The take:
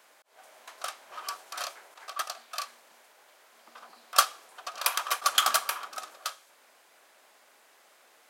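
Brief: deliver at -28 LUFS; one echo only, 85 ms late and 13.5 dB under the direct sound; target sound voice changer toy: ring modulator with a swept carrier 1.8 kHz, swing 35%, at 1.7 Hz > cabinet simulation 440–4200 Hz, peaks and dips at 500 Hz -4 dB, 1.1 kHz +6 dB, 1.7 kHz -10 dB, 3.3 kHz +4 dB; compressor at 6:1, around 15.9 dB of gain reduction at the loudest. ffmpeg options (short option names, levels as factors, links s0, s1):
-af "acompressor=threshold=0.02:ratio=6,aecho=1:1:85:0.211,aeval=exprs='val(0)*sin(2*PI*1800*n/s+1800*0.35/1.7*sin(2*PI*1.7*n/s))':c=same,highpass=440,equalizer=f=500:t=q:w=4:g=-4,equalizer=f=1100:t=q:w=4:g=6,equalizer=f=1700:t=q:w=4:g=-10,equalizer=f=3300:t=q:w=4:g=4,lowpass=f=4200:w=0.5412,lowpass=f=4200:w=1.3066,volume=6.31"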